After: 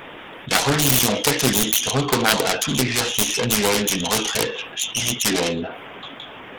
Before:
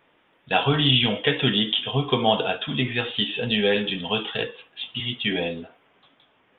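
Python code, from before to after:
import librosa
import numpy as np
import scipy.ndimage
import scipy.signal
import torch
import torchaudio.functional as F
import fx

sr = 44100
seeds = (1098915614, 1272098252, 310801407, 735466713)

y = fx.self_delay(x, sr, depth_ms=0.74)
y = fx.hpss(y, sr, part='harmonic', gain_db=-5)
y = fx.env_flatten(y, sr, amount_pct=50)
y = y * librosa.db_to_amplitude(3.0)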